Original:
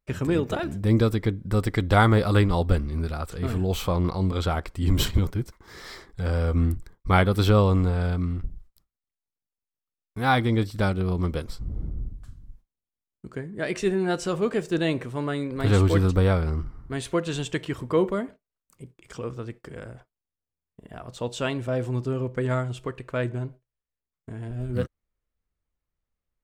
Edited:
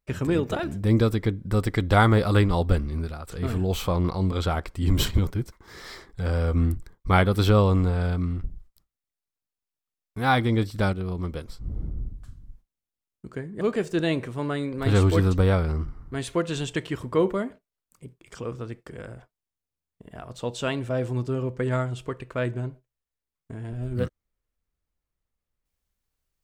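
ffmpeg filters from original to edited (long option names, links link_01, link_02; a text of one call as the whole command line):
ffmpeg -i in.wav -filter_complex "[0:a]asplit=5[link_01][link_02][link_03][link_04][link_05];[link_01]atrim=end=3.27,asetpts=PTS-STARTPTS,afade=type=out:start_time=2.92:duration=0.35:silence=0.334965[link_06];[link_02]atrim=start=3.27:end=10.932,asetpts=PTS-STARTPTS,afade=type=in:duration=0.004:curve=hsin:silence=0.334965[link_07];[link_03]atrim=start=10.928:end=11.642,asetpts=PTS-STARTPTS,volume=-4.5dB[link_08];[link_04]atrim=start=11.638:end=13.612[link_09];[link_05]atrim=start=14.388[link_10];[link_06][link_07]concat=n=2:v=0:a=1[link_11];[link_11][link_08]acrossfade=duration=0.004:curve1=hsin:curve2=hsin[link_12];[link_12][link_09]acrossfade=duration=0.004:curve1=hsin:curve2=hsin[link_13];[link_13][link_10]acrossfade=duration=0.004:curve1=hsin:curve2=hsin" out.wav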